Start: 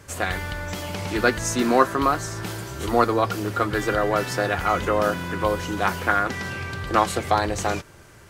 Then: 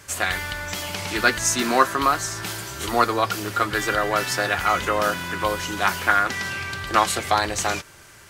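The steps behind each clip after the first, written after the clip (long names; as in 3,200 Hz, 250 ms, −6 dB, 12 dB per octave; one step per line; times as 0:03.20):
tilt shelving filter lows −5.5 dB
notch filter 490 Hz, Q 16
level +1 dB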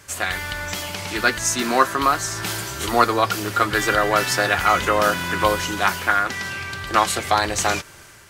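automatic gain control
level −1 dB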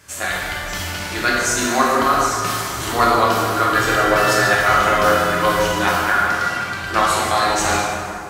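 dense smooth reverb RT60 2.4 s, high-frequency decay 0.55×, DRR −5 dB
level −3 dB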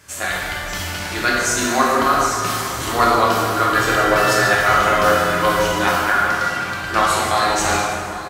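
single-tap delay 814 ms −17 dB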